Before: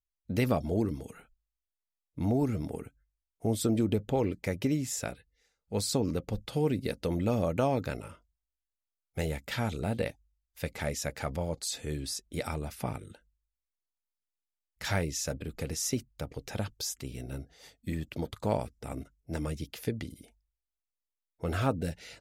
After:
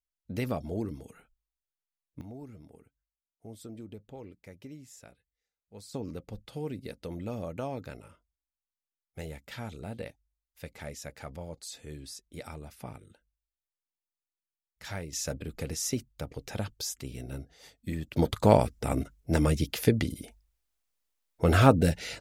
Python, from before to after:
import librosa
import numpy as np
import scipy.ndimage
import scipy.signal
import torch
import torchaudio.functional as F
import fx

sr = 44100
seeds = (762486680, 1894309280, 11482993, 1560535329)

y = fx.gain(x, sr, db=fx.steps((0.0, -4.5), (2.21, -17.0), (5.94, -8.0), (15.13, 0.0), (18.17, 9.5)))